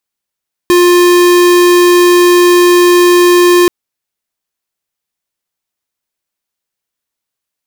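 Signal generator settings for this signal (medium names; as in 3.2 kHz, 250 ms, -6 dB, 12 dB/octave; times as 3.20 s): tone square 353 Hz -6 dBFS 2.98 s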